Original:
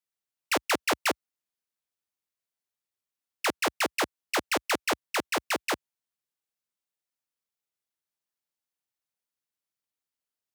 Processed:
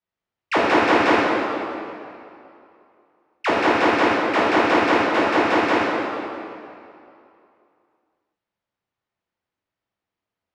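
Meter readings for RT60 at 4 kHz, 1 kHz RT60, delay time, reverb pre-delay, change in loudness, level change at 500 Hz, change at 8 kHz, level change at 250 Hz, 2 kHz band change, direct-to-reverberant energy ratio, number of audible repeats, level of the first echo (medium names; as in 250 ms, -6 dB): 2.0 s, 2.6 s, no echo, 8 ms, +10.0 dB, +13.5 dB, -7.5 dB, +15.5 dB, +9.5 dB, -8.0 dB, no echo, no echo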